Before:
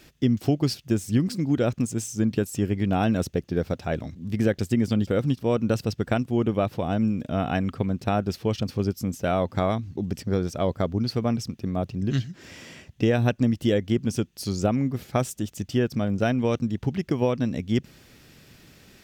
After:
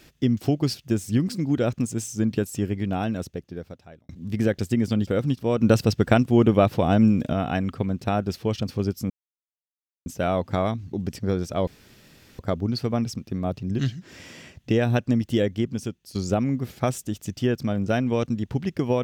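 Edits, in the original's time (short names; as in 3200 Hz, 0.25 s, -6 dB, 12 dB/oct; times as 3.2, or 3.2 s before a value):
2.45–4.09 fade out linear
5.61–7.33 gain +6 dB
9.1 insert silence 0.96 s
10.71 insert room tone 0.72 s
13.76–14.47 fade out, to -11 dB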